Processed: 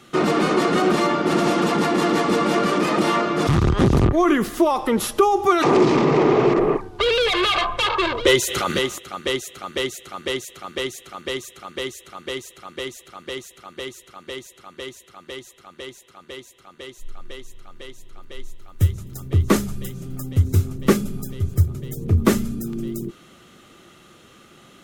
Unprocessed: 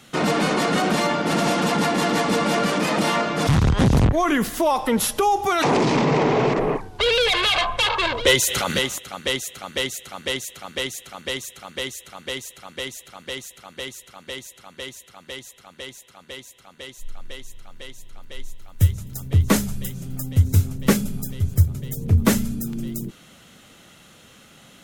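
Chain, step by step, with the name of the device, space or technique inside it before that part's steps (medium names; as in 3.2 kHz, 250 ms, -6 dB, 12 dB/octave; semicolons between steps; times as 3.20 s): inside a helmet (treble shelf 5.8 kHz -4.5 dB; small resonant body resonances 360/1200 Hz, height 11 dB, ringing for 45 ms); trim -1 dB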